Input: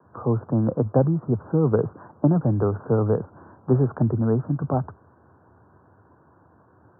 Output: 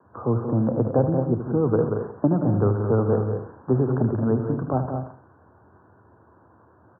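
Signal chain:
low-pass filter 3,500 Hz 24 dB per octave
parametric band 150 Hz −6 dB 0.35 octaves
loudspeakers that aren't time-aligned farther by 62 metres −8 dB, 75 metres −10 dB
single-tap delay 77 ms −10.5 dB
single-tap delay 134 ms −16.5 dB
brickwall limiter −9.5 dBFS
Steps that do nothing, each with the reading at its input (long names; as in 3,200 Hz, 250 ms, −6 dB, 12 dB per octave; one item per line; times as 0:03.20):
low-pass filter 3,500 Hz: nothing at its input above 910 Hz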